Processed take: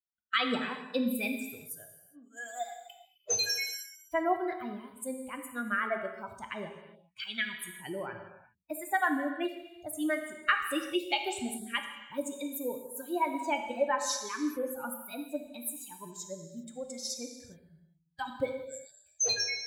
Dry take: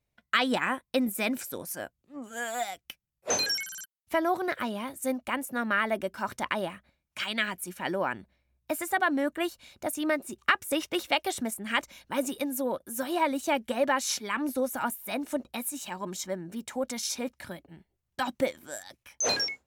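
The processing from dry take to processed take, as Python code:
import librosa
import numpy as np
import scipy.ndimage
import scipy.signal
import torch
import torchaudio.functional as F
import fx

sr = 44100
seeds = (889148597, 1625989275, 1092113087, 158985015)

y = fx.bin_expand(x, sr, power=2.0)
y = fx.rev_gated(y, sr, seeds[0], gate_ms=430, shape='falling', drr_db=4.0)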